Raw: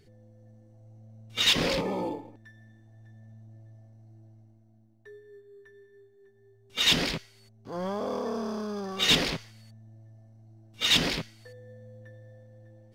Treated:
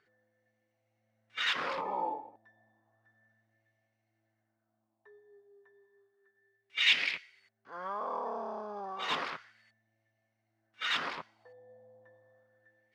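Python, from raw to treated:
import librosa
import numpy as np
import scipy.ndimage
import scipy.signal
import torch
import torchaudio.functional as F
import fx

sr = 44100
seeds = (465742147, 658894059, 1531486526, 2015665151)

y = fx.filter_lfo_bandpass(x, sr, shape='sine', hz=0.32, low_hz=800.0, high_hz=2300.0, q=3.3)
y = y * 10.0 ** (5.0 / 20.0)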